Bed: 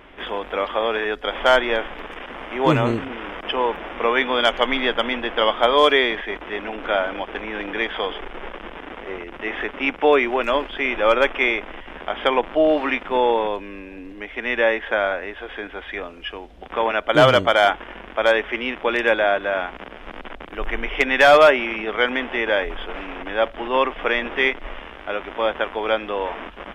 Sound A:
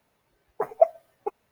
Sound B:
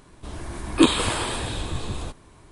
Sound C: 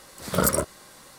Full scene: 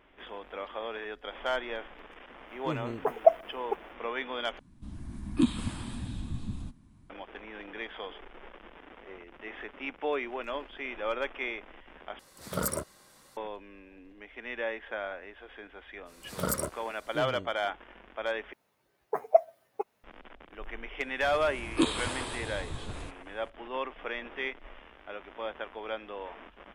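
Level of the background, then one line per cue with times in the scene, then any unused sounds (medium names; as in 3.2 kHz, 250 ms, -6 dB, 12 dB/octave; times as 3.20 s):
bed -15.5 dB
2.45 s: add A -1 dB, fades 0.05 s
4.59 s: replace with B -17.5 dB + resonant low shelf 320 Hz +10.5 dB, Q 3
12.19 s: replace with C -9.5 dB
16.05 s: add C -9 dB, fades 0.05 s
18.53 s: replace with A -2.5 dB + high-pass 150 Hz 6 dB/octave
20.99 s: add B -10 dB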